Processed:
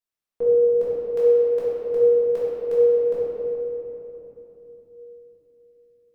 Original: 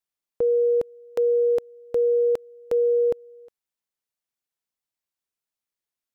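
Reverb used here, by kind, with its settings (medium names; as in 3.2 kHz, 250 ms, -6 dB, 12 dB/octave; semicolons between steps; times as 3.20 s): simulated room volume 210 m³, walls hard, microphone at 1.7 m; trim -8.5 dB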